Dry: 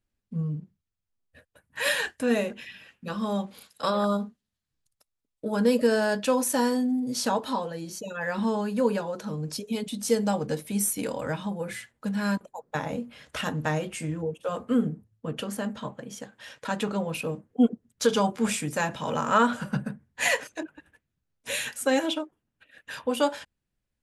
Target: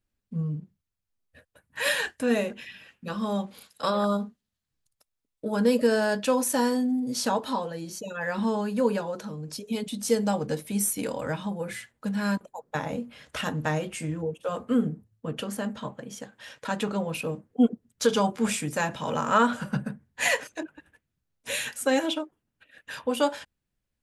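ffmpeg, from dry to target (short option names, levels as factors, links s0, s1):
-filter_complex "[0:a]asettb=1/sr,asplit=3[s0][s1][s2];[s0]atrim=end=9.164[s3];[s1]atrim=start=9.16:end=9.66,asetpts=PTS-STARTPTS,afade=t=in:d=0.004:c=qsin,afade=t=out:st=0.496:d=0.004:c=qsin,acompressor=threshold=0.0224:ratio=6[s4];[s2]atrim=start=9.656[s5];[s3][s4]acrossfade=d=0.004:c1=hsin:c2=qsin[s6];[s6][s5]acrossfade=d=0.004:c1=qsin:c2=hsin"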